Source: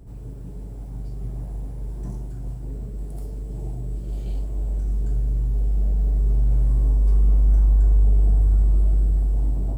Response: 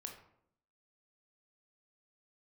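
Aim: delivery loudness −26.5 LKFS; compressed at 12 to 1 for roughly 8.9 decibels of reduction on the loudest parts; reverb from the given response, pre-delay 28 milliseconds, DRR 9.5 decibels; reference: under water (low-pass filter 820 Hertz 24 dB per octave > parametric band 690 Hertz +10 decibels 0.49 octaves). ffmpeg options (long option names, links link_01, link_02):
-filter_complex "[0:a]acompressor=threshold=-22dB:ratio=12,asplit=2[link_01][link_02];[1:a]atrim=start_sample=2205,adelay=28[link_03];[link_02][link_03]afir=irnorm=-1:irlink=0,volume=-5.5dB[link_04];[link_01][link_04]amix=inputs=2:normalize=0,lowpass=frequency=820:width=0.5412,lowpass=frequency=820:width=1.3066,equalizer=frequency=690:width_type=o:width=0.49:gain=10,volume=5.5dB"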